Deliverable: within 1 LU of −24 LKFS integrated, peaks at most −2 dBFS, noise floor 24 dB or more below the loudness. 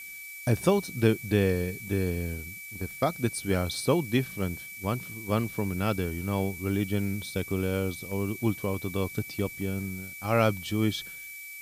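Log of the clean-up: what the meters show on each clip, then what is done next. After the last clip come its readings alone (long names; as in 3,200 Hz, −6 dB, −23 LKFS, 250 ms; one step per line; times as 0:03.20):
interfering tone 2,300 Hz; level of the tone −41 dBFS; background noise floor −43 dBFS; target noise floor −54 dBFS; integrated loudness −29.5 LKFS; sample peak −9.0 dBFS; target loudness −24.0 LKFS
→ notch filter 2,300 Hz, Q 30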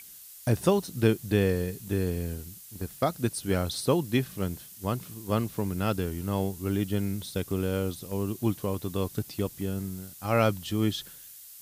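interfering tone none found; background noise floor −48 dBFS; target noise floor −54 dBFS
→ noise reduction from a noise print 6 dB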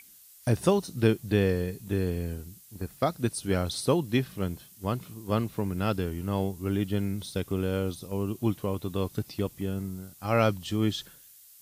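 background noise floor −54 dBFS; integrated loudness −29.5 LKFS; sample peak −9.0 dBFS; target loudness −24.0 LKFS
→ level +5.5 dB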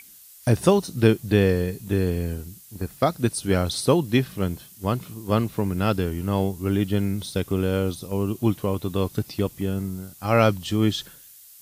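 integrated loudness −24.0 LKFS; sample peak −3.5 dBFS; background noise floor −48 dBFS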